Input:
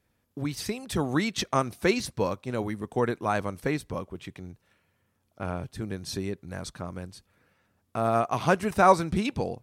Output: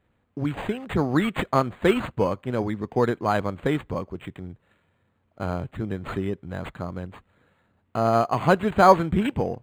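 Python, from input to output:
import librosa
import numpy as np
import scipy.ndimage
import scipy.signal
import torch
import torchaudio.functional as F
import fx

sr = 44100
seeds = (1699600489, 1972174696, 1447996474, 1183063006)

y = np.interp(np.arange(len(x)), np.arange(len(x))[::8], x[::8])
y = y * 10.0 ** (4.5 / 20.0)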